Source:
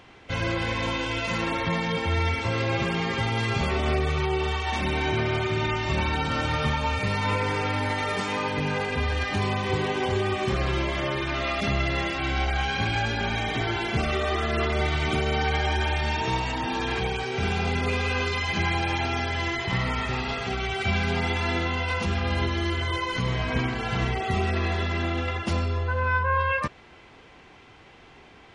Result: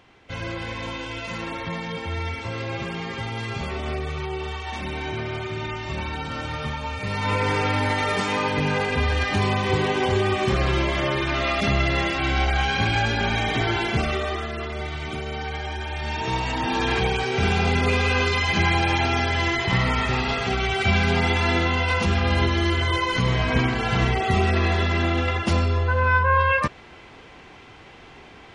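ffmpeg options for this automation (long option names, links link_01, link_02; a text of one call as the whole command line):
ffmpeg -i in.wav -af "volume=14.5dB,afade=type=in:start_time=6.98:duration=0.52:silence=0.398107,afade=type=out:start_time=13.8:duration=0.76:silence=0.334965,afade=type=in:start_time=15.88:duration=0.97:silence=0.298538" out.wav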